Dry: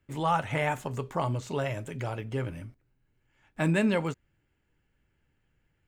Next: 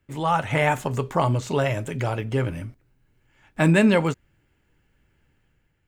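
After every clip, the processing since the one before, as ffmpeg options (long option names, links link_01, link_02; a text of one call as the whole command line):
ffmpeg -i in.wav -af "dynaudnorm=framelen=100:gausssize=9:maxgain=5dB,volume=3dB" out.wav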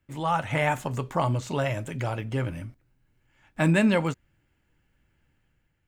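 ffmpeg -i in.wav -af "equalizer=frequency=420:width_type=o:width=0.23:gain=-6,volume=-3.5dB" out.wav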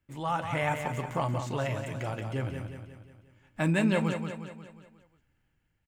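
ffmpeg -i in.wav -af "aecho=1:1:179|358|537|716|895|1074:0.447|0.228|0.116|0.0593|0.0302|0.0154,volume=-5dB" out.wav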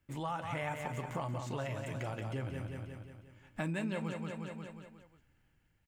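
ffmpeg -i in.wav -af "acompressor=threshold=-40dB:ratio=3,volume=2dB" out.wav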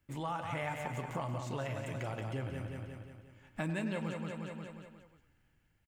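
ffmpeg -i in.wav -filter_complex "[0:a]asplit=2[link_01][link_02];[link_02]adelay=100,highpass=300,lowpass=3400,asoftclip=type=hard:threshold=-32dB,volume=-10dB[link_03];[link_01][link_03]amix=inputs=2:normalize=0" out.wav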